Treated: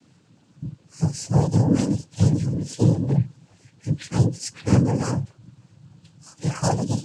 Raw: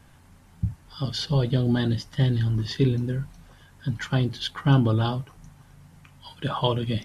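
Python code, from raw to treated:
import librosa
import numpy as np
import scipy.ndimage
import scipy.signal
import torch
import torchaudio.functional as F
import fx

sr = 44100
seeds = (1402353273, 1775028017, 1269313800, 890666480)

y = fx.partial_stretch(x, sr, pct=123)
y = fx.peak_eq(y, sr, hz=1600.0, db=-11.5, octaves=1.2)
y = fx.noise_vocoder(y, sr, seeds[0], bands=8)
y = y * 10.0 ** (6.0 / 20.0)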